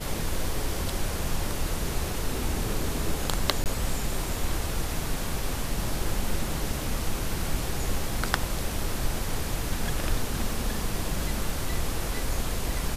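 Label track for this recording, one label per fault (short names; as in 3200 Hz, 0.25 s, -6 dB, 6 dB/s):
3.640000	3.660000	gap 18 ms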